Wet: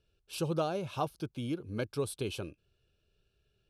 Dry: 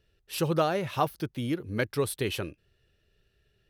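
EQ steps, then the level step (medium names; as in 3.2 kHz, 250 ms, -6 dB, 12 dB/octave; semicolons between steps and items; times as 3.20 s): low-pass 11 kHz 24 dB/octave; dynamic bell 1.7 kHz, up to -5 dB, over -40 dBFS, Q 0.81; Butterworth band-stop 1.9 kHz, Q 3.8; -5.0 dB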